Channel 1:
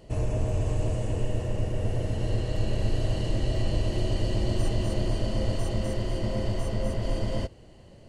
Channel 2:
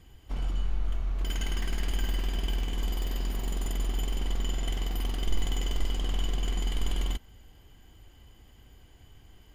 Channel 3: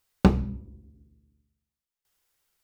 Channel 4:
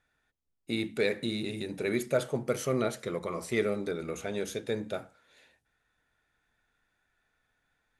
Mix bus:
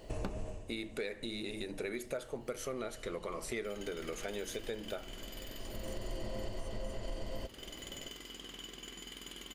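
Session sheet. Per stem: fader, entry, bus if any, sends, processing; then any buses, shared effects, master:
+1.5 dB, 0.00 s, no send, auto duck -21 dB, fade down 0.20 s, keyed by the fourth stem
-6.5 dB, 2.40 s, no send, HPF 160 Hz 12 dB/oct; bell 770 Hz -10.5 dB 0.95 oct
-3.0 dB, 0.00 s, no send, dry
+0.5 dB, 0.00 s, no send, dry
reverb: off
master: bell 120 Hz -9.5 dB 1.9 oct; compressor 6:1, threshold -36 dBFS, peak gain reduction 16.5 dB

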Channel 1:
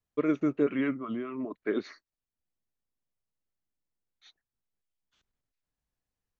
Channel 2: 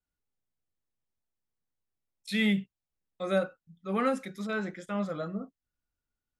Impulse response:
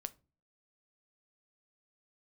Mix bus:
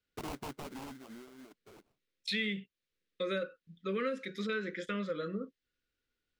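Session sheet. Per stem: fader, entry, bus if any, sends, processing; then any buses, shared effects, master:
-5.5 dB, 0.00 s, no send, high shelf 2900 Hz -11.5 dB; sample-rate reducer 1800 Hz, jitter 20%; wavefolder -29 dBFS; auto duck -23 dB, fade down 1.85 s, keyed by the second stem
-3.0 dB, 0.00 s, no send, EQ curve 120 Hz 0 dB, 520 Hz +13 dB, 750 Hz -22 dB, 1100 Hz +3 dB, 1700 Hz +12 dB, 3800 Hz +13 dB, 9700 Hz -4 dB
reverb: off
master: compressor 4:1, threshold -34 dBFS, peak gain reduction 14.5 dB

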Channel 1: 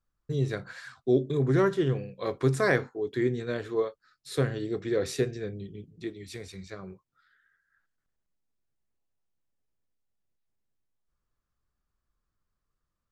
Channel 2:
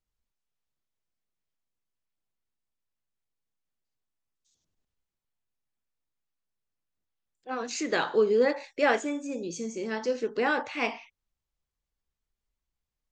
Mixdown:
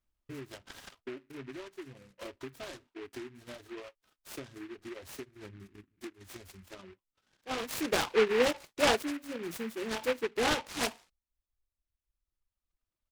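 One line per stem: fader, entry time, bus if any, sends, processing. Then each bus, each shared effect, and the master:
-6.5 dB, 0.00 s, no send, comb 3.2 ms, depth 81%; compressor 10:1, threshold -33 dBFS, peak gain reduction 18 dB
-2.0 dB, 0.00 s, no send, dry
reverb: off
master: reverb removal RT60 1.7 s; noise-modulated delay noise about 1700 Hz, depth 0.13 ms

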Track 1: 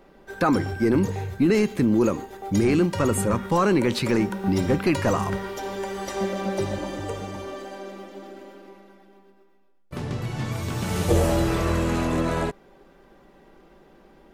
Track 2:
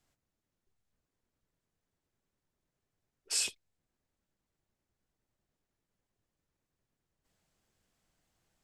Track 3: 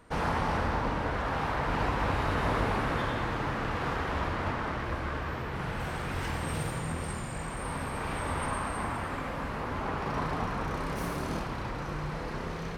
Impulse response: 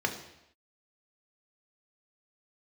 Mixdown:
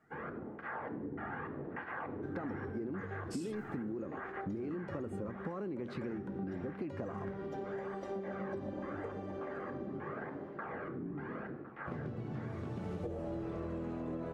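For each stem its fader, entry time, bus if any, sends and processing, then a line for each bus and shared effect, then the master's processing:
-3.0 dB, 1.95 s, bus A, no send, no echo send, dry
-11.5 dB, 0.00 s, no bus, no send, no echo send, sustainer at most 68 dB/s
-15.0 dB, 0.00 s, bus A, send -6 dB, echo send -14.5 dB, AGC gain up to 6 dB; LFO low-pass square 1.7 Hz 320–1600 Hz; tape flanging out of phase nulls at 0.81 Hz, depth 2 ms
bus A: 0.0 dB, band-pass 390 Hz, Q 0.61; compressor, threshold -26 dBFS, peak gain reduction 7 dB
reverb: on, pre-delay 3 ms
echo: echo 1.058 s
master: low shelf 200 Hz +5 dB; notch 940 Hz, Q 13; compressor 4:1, threshold -39 dBFS, peak gain reduction 14 dB

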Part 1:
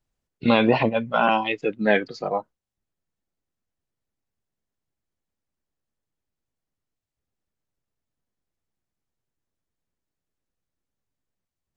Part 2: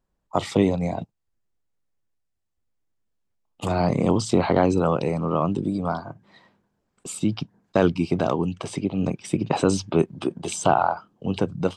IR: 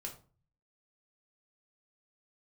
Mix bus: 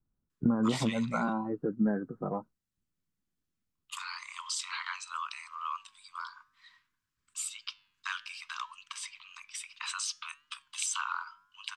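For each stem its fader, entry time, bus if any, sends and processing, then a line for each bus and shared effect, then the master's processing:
-1.0 dB, 0.00 s, no send, steep low-pass 1500 Hz 72 dB/oct; bell 220 Hz +6.5 dB 1.6 oct; compressor 6:1, threshold -20 dBFS, peak gain reduction 11 dB
+3.0 dB, 0.30 s, no send, steep high-pass 990 Hz 96 dB/oct; flange 0.59 Hz, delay 6.5 ms, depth 4.1 ms, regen +90%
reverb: off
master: bell 630 Hz -10.5 dB 1.7 oct

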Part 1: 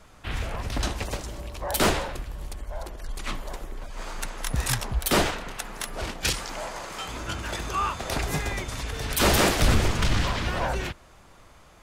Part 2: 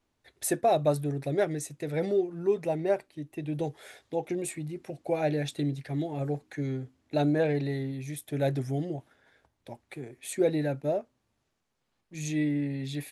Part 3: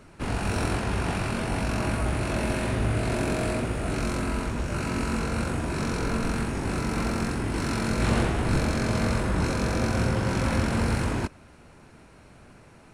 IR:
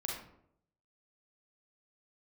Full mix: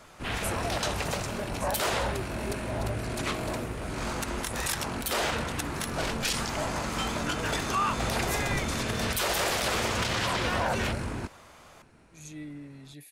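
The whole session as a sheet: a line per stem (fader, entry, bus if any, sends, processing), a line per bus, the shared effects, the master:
+2.5 dB, 0.00 s, no send, HPF 420 Hz 24 dB/oct
-13.5 dB, 0.00 s, no send, high shelf 4500 Hz +10 dB
-7.0 dB, 0.00 s, no send, dry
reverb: off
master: limiter -18.5 dBFS, peak gain reduction 11 dB

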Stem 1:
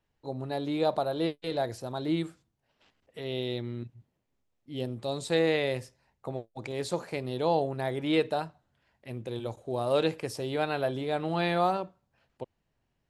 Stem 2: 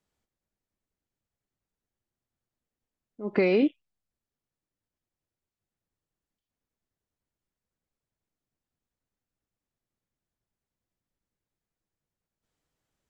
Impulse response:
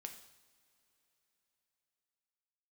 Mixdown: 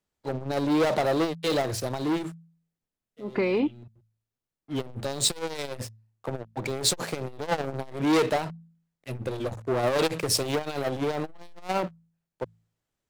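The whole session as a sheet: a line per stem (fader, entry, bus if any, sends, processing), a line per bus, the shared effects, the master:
-4.0 dB, 0.00 s, no send, sample leveller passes 5; three-band expander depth 70%; auto duck -22 dB, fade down 1.30 s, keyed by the second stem
-1.5 dB, 0.00 s, no send, dry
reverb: off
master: de-hum 55.15 Hz, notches 4; core saturation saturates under 550 Hz

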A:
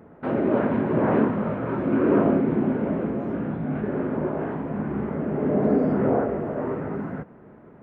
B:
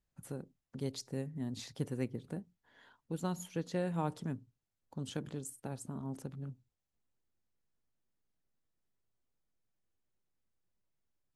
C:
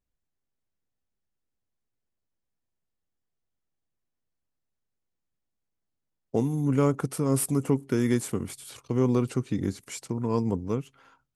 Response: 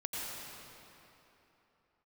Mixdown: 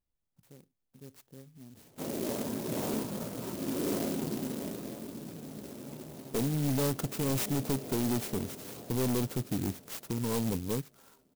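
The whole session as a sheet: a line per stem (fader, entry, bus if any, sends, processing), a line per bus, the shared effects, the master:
-14.0 dB, 1.75 s, send -13 dB, echo send -14.5 dB, auto duck -16 dB, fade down 1.80 s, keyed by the third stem
-12.0 dB, 0.20 s, no send, no echo send, dry
-2.0 dB, 0.00 s, no send, no echo send, dry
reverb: on, RT60 3.3 s, pre-delay 82 ms
echo: feedback echo 0.909 s, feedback 42%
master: hard clip -26 dBFS, distortion -8 dB; clock jitter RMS 0.14 ms

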